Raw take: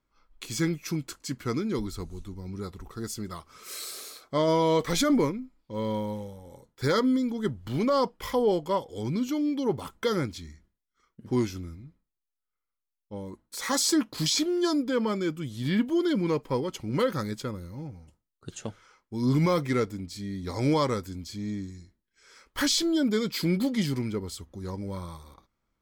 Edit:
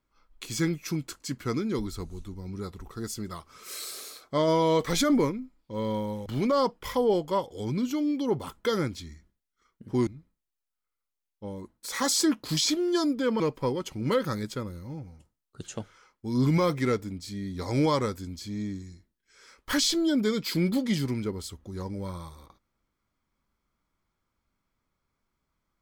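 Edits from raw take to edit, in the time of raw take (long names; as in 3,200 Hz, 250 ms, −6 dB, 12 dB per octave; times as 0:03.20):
0:06.26–0:07.64: remove
0:11.45–0:11.76: remove
0:15.09–0:16.28: remove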